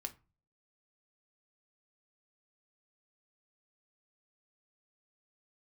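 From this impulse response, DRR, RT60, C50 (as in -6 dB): 6.0 dB, 0.30 s, 18.0 dB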